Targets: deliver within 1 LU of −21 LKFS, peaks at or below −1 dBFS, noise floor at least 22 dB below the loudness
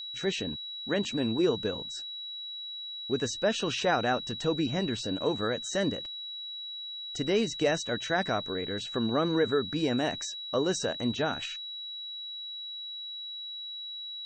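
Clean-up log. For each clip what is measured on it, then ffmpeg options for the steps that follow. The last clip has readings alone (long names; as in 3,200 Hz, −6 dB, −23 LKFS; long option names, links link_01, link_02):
interfering tone 3,900 Hz; level of the tone −37 dBFS; integrated loudness −31.0 LKFS; sample peak −14.5 dBFS; target loudness −21.0 LKFS
→ -af "bandreject=frequency=3900:width=30"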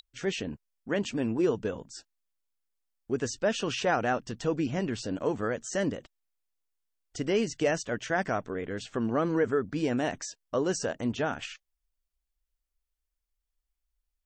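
interfering tone none found; integrated loudness −30.5 LKFS; sample peak −14.5 dBFS; target loudness −21.0 LKFS
→ -af "volume=9.5dB"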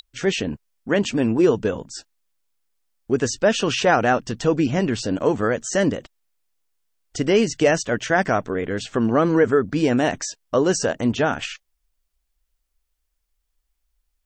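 integrated loudness −21.0 LKFS; sample peak −5.0 dBFS; background noise floor −74 dBFS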